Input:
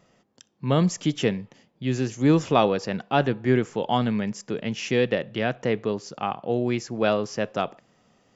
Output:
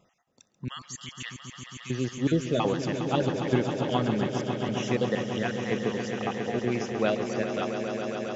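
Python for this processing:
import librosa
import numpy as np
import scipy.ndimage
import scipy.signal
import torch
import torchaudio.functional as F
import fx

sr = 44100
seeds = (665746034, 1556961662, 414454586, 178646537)

p1 = fx.spec_dropout(x, sr, seeds[0], share_pct=31)
p2 = fx.highpass(p1, sr, hz=1400.0, slope=24, at=(0.68, 1.9))
p3 = p2 + fx.echo_swell(p2, sr, ms=136, loudest=5, wet_db=-10.0, dry=0)
y = p3 * librosa.db_to_amplitude(-4.0)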